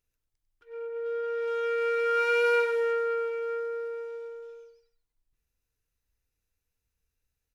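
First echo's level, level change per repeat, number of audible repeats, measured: −9.0 dB, repeats not evenly spaced, 1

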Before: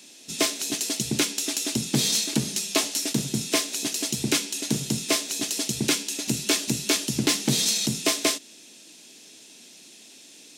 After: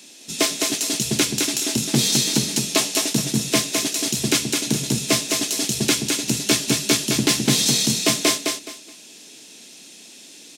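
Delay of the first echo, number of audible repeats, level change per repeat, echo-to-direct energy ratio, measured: 211 ms, 3, −12.5 dB, −4.0 dB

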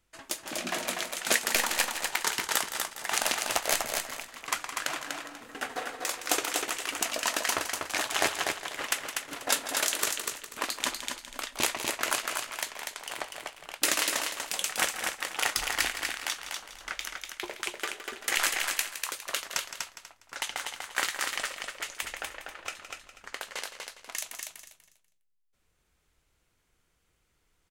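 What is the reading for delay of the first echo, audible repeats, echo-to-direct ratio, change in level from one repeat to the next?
165 ms, 6, −3.5 dB, repeats not evenly spaced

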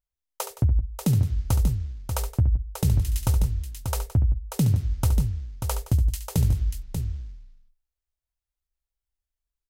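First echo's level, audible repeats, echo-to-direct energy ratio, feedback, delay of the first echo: −9.5 dB, 3, −5.0 dB, repeats not evenly spaced, 70 ms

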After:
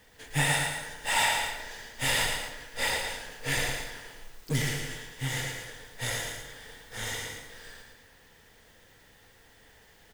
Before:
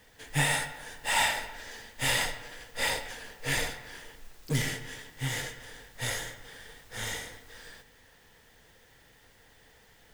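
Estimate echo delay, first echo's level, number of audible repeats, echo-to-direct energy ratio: 113 ms, −5.0 dB, 2, −3.5 dB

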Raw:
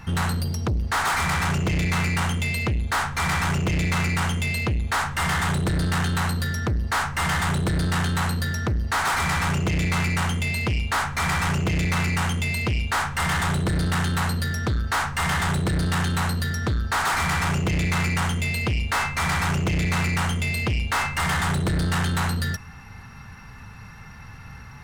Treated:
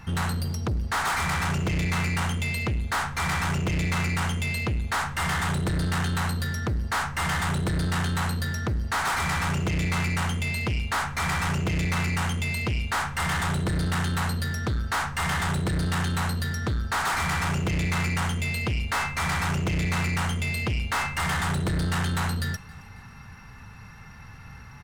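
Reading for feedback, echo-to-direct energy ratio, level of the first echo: 53%, −22.5 dB, −24.0 dB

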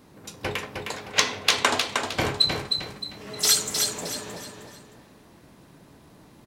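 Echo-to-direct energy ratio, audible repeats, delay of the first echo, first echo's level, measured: −4.5 dB, 4, 310 ms, −5.0 dB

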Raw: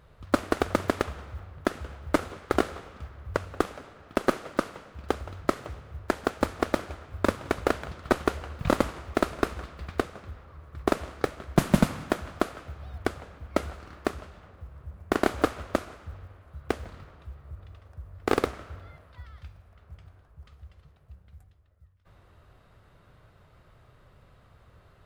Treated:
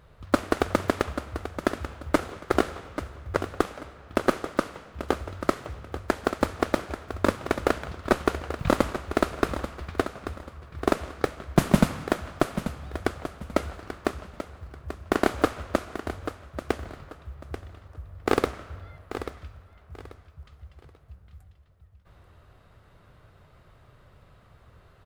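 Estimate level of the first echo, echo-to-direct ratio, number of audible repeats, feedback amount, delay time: −11.0 dB, −10.5 dB, 3, 26%, 837 ms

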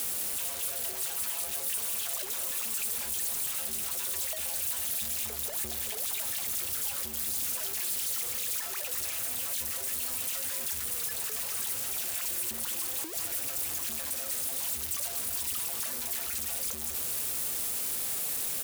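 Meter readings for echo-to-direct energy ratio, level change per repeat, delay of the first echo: −12.0 dB, repeats not evenly spaced, 207 ms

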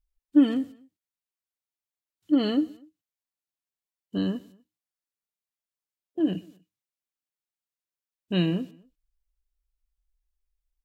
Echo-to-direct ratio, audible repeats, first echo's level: −22.0 dB, 2, −23.0 dB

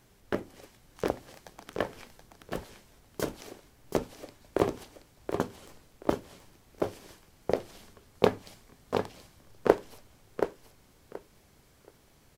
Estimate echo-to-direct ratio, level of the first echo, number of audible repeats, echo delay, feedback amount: −7.0 dB, −7.0 dB, 3, 727 ms, 20%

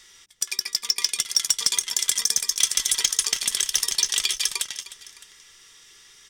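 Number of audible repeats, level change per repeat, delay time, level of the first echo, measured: 2, −4.5 dB, 306 ms, −17.0 dB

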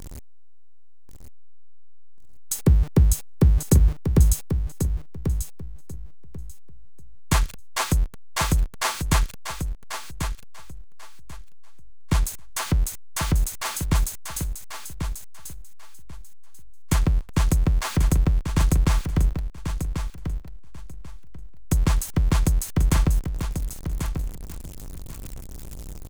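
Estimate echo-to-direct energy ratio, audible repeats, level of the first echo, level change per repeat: −8.0 dB, 2, −8.0 dB, −14.0 dB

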